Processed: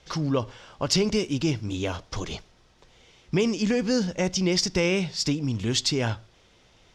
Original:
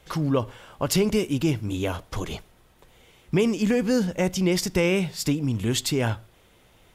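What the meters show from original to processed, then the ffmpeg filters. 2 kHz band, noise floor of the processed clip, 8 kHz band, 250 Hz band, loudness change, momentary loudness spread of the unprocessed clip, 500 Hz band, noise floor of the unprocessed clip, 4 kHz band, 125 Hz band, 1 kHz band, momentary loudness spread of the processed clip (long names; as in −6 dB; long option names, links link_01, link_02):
−0.5 dB, −59 dBFS, +0.5 dB, −2.0 dB, −1.0 dB, 11 LU, −2.0 dB, −58 dBFS, +3.5 dB, −2.0 dB, −2.0 dB, 11 LU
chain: -af "lowpass=frequency=5500:width_type=q:width=2.6,volume=-2dB"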